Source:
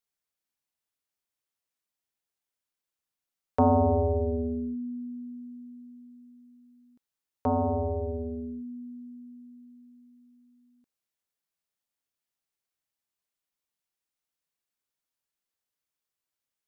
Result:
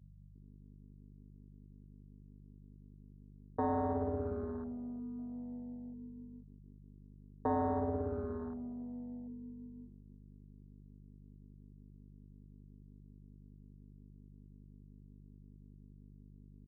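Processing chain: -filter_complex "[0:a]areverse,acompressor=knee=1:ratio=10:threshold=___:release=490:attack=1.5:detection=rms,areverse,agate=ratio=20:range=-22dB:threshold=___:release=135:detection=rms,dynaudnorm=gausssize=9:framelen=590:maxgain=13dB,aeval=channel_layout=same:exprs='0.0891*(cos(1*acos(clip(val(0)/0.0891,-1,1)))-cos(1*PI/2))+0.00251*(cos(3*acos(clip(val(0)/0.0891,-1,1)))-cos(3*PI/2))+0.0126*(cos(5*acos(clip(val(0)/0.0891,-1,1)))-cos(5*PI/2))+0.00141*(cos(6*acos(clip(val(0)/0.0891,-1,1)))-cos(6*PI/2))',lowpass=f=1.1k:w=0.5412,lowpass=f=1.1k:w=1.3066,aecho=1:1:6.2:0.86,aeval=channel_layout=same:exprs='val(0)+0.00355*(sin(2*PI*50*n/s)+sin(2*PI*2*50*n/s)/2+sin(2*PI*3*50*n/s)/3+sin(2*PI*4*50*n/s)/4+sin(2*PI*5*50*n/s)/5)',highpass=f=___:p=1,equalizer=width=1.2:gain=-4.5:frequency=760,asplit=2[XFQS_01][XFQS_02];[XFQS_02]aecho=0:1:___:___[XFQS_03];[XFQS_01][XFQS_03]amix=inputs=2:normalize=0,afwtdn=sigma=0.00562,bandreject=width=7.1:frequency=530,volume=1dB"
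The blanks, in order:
-36dB, -53dB, 130, 345, 0.158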